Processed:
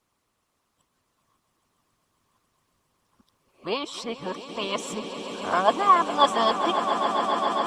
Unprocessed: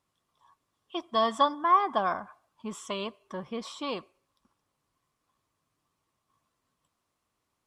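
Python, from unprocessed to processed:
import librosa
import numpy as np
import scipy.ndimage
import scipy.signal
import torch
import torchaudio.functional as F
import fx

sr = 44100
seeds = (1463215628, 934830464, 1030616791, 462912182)

y = x[::-1].copy()
y = fx.echo_swell(y, sr, ms=137, loudest=8, wet_db=-12)
y = fx.hpss(y, sr, part='harmonic', gain_db=-9)
y = y * 10.0 ** (9.0 / 20.0)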